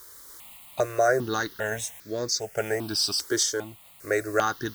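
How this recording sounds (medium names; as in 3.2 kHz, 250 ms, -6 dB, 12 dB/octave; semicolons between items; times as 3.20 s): a quantiser's noise floor 8-bit, dither triangular; random-step tremolo; notches that jump at a steady rate 2.5 Hz 710–2900 Hz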